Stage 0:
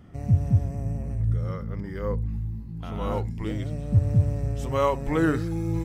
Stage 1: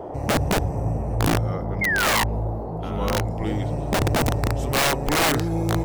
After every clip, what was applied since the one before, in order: painted sound fall, 1.81–2.24 s, 890–2200 Hz -26 dBFS; integer overflow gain 18.5 dB; band noise 280–830 Hz -38 dBFS; trim +4 dB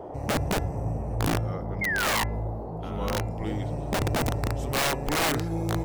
de-hum 338.5 Hz, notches 8; trim -5 dB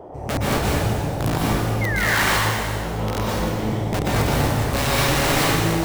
reverberation RT60 2.0 s, pre-delay 113 ms, DRR -6.5 dB

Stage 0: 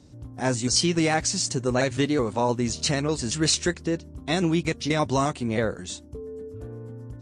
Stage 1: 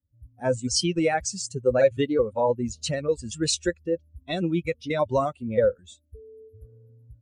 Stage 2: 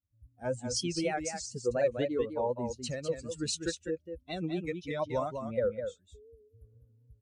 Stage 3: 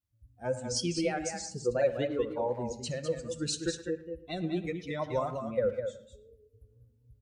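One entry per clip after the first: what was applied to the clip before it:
expander on every frequency bin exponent 2; peaking EQ 530 Hz +14 dB 0.37 oct
delay 201 ms -7 dB; vibrato 4 Hz 79 cents; trim -9 dB
speakerphone echo 110 ms, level -15 dB; simulated room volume 2200 m³, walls furnished, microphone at 0.84 m

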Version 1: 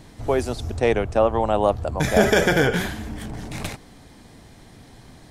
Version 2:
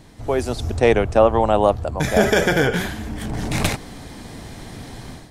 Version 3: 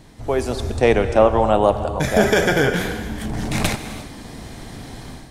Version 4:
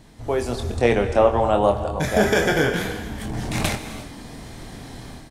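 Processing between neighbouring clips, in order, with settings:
level rider gain up to 12 dB; trim -1 dB
gated-style reverb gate 370 ms flat, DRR 9.5 dB
doubling 25 ms -7 dB; trim -3 dB

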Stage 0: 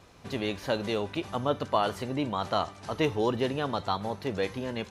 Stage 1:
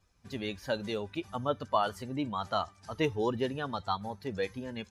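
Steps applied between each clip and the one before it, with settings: expander on every frequency bin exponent 1.5; peaking EQ 1.3 kHz +3 dB; trim -1.5 dB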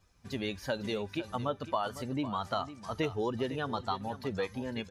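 compression 2.5:1, threshold -34 dBFS, peak gain reduction 8.5 dB; delay 504 ms -13.5 dB; trim +3 dB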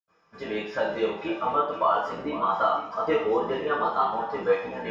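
octave divider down 2 oct, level +3 dB; reverberation, pre-delay 76 ms

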